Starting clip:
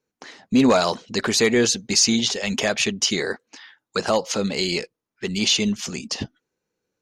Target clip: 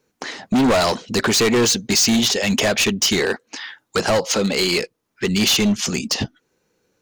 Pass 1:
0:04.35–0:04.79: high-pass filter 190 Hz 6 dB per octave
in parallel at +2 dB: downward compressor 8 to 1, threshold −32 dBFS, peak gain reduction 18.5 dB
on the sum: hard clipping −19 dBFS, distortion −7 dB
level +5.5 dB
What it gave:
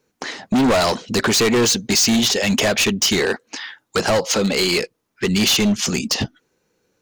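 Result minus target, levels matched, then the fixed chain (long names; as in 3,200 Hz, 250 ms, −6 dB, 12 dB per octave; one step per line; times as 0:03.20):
downward compressor: peak gain reduction −6 dB
0:04.35–0:04.79: high-pass filter 190 Hz 6 dB per octave
in parallel at +2 dB: downward compressor 8 to 1, threshold −39 dBFS, peak gain reduction 25 dB
on the sum: hard clipping −19 dBFS, distortion −8 dB
level +5.5 dB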